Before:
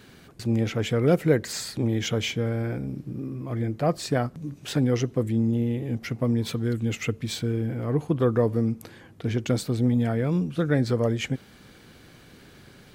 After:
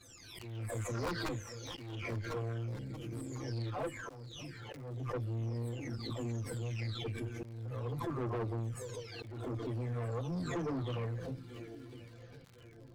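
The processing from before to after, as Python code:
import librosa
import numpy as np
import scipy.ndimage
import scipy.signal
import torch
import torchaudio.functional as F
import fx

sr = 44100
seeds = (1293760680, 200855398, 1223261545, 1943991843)

y = fx.spec_delay(x, sr, highs='early', ms=828)
y = (np.mod(10.0 ** (11.5 / 20.0) * y + 1.0, 2.0) - 1.0) / 10.0 ** (11.5 / 20.0)
y = fx.echo_swing(y, sr, ms=1050, ratio=1.5, feedback_pct=53, wet_db=-18.0)
y = fx.chorus_voices(y, sr, voices=6, hz=0.22, base_ms=10, depth_ms=2.0, mix_pct=70)
y = fx.tube_stage(y, sr, drive_db=28.0, bias=0.4)
y = fx.auto_swell(y, sr, attack_ms=349.0)
y = fx.dynamic_eq(y, sr, hz=1100.0, q=5.6, threshold_db=-57.0, ratio=4.0, max_db=5)
y = fx.dmg_crackle(y, sr, seeds[0], per_s=140.0, level_db=-46.0)
y = fx.high_shelf(y, sr, hz=9300.0, db=-8.5)
y = fx.pre_swell(y, sr, db_per_s=41.0)
y = F.gain(torch.from_numpy(y), -5.5).numpy()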